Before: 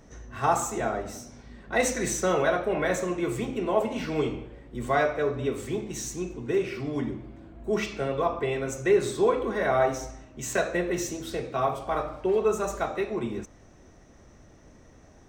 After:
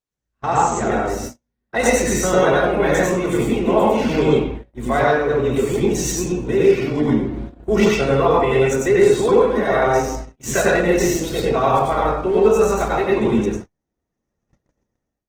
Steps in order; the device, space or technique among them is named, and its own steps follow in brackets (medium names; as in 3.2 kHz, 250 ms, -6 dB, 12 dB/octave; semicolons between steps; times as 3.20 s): speakerphone in a meeting room (reverberation RT60 0.45 s, pre-delay 89 ms, DRR -3 dB; level rider gain up to 16 dB; gate -25 dBFS, range -43 dB; trim -2.5 dB; Opus 16 kbps 48 kHz)